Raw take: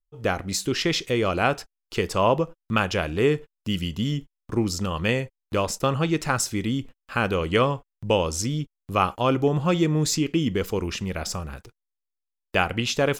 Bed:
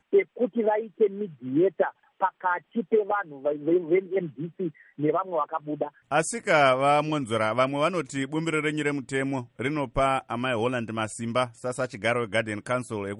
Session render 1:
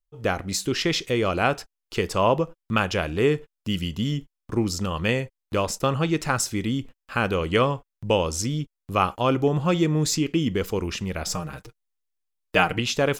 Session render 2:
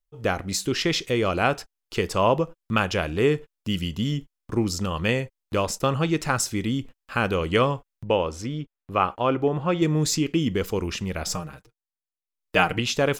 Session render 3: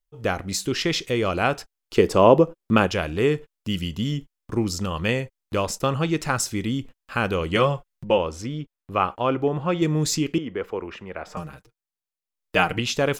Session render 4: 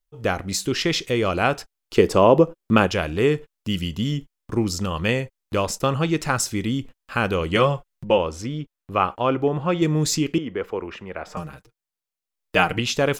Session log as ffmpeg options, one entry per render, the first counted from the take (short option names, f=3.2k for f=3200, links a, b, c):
-filter_complex "[0:a]asettb=1/sr,asplit=3[a][b][c];[a]atrim=end=11.264[d];[b]atrim=start=11.26:end=12.79,asetpts=PTS-STARTPTS,afade=t=in:d=0.004:c=qsin,afade=t=out:st=1.526:d=0.004:c=qsin,aecho=1:1:6.5:0.86,atrim=end_sample=67473[e];[c]atrim=start=12.786[f];[d][e]acrossfade=d=0.004:c1=hsin:c2=qsin[g];[g][f]acrossfade=d=0.004:c1=qsin:c2=hsin"
-filter_complex "[0:a]asettb=1/sr,asplit=3[a][b][c];[a]atrim=end=8.044[d];[b]atrim=start=8.04:end=9.82,asetpts=PTS-STARTPTS,afade=t=in:d=0.004:c=qsin,afade=t=out:st=1.776:d=0.004:c=qsin,bass=f=250:g=-5,treble=f=4k:g=-15[e];[c]atrim=start=9.816[f];[d][e]acrossfade=d=0.004:c1=hsin:c2=qsin[g];[g][f]acrossfade=d=0.004:c1=qsin:c2=hsin,asplit=3[h][i][j];[h]atrim=end=11.69,asetpts=PTS-STARTPTS,afade=t=out:st=11.33:d=0.36:silence=0.16788[k];[i]atrim=start=11.69:end=12.24,asetpts=PTS-STARTPTS,volume=-15.5dB[l];[j]atrim=start=12.24,asetpts=PTS-STARTPTS,afade=t=in:d=0.36:silence=0.16788[m];[k][l][m]concat=n=3:v=0:a=1"
-filter_complex "[0:a]asettb=1/sr,asplit=3[a][b][c];[a]atrim=end=1.984[d];[b]atrim=start=1.98:end=2.87,asetpts=PTS-STARTPTS,afade=t=in:d=0.004:c=qsin,afade=t=out:st=0.886:d=0.004:c=qsin,equalizer=f=350:t=o:w=2.2:g=9.5[e];[c]atrim=start=2.866[f];[d][e]acrossfade=d=0.004:c1=hsin:c2=qsin[g];[g][f]acrossfade=d=0.004:c1=qsin:c2=hsin,asettb=1/sr,asplit=3[h][i][j];[h]atrim=end=7.554[k];[i]atrim=start=7.55:end=8.18,asetpts=PTS-STARTPTS,afade=t=in:d=0.004:c=qsin,afade=t=out:st=0.626:d=0.004:c=qsin,aecho=1:1:5.6:0.65,atrim=end_sample=27783[l];[j]atrim=start=8.176[m];[k][l]acrossfade=d=0.004:c1=hsin:c2=qsin[n];[n][m]acrossfade=d=0.004:c1=qsin:c2=hsin,asettb=1/sr,asplit=3[o][p][q];[o]atrim=end=10.384[r];[p]atrim=start=10.38:end=11.37,asetpts=PTS-STARTPTS,afade=t=in:d=0.004:c=qsin,afade=t=out:st=0.986:d=0.004:c=qsin,acrossover=split=330 2400:gain=0.2 1 0.0708[s][t][u];[s][t][u]amix=inputs=3:normalize=0[v];[q]atrim=start=11.366[w];[r][v]acrossfade=d=0.004:c1=hsin:c2=qsin[x];[x][w]acrossfade=d=0.004:c1=qsin:c2=hsin"
-af "volume=1.5dB,alimiter=limit=-3dB:level=0:latency=1"